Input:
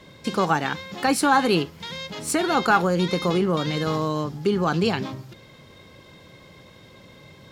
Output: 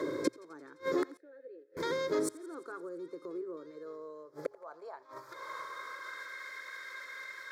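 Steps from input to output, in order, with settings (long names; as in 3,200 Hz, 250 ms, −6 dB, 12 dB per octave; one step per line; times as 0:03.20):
gate with flip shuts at −19 dBFS, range −40 dB
spectral tilt −2.5 dB per octave
phaser with its sweep stopped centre 770 Hz, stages 6
downward compressor 6 to 1, threshold −48 dBFS, peak gain reduction 18 dB
high-pass filter 68 Hz
mains-hum notches 60/120 Hz
feedback echo with a high-pass in the loop 86 ms, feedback 75%, high-pass 530 Hz, level −22 dB
high-pass filter sweep 310 Hz → 1,700 Hz, 0:03.35–0:06.44
0:01.17–0:01.77: formant filter e
0:04.51–0:05.03: parametric band 770 Hz +14 dB 0.89 octaves
level +15 dB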